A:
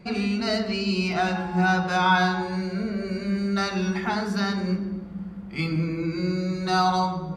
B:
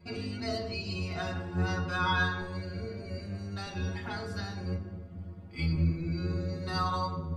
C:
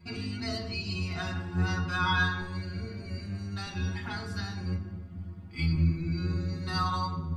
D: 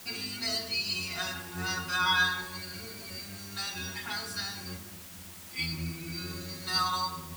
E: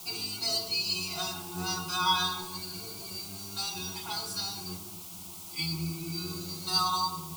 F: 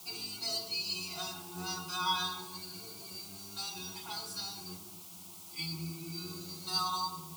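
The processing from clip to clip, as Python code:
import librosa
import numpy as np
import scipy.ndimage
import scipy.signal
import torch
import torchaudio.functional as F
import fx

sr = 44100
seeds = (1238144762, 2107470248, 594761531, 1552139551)

y1 = fx.octave_divider(x, sr, octaves=1, level_db=0.0)
y1 = fx.stiff_resonator(y1, sr, f0_hz=82.0, decay_s=0.34, stiffness=0.008)
y2 = fx.peak_eq(y1, sr, hz=530.0, db=-11.0, octaves=0.84)
y2 = y2 * librosa.db_to_amplitude(2.5)
y3 = fx.riaa(y2, sr, side='recording')
y3 = fx.quant_dither(y3, sr, seeds[0], bits=8, dither='triangular')
y4 = fx.fixed_phaser(y3, sr, hz=350.0, stages=8)
y4 = y4 * librosa.db_to_amplitude(4.0)
y5 = scipy.signal.sosfilt(scipy.signal.butter(2, 110.0, 'highpass', fs=sr, output='sos'), y4)
y5 = y5 * librosa.db_to_amplitude(-5.5)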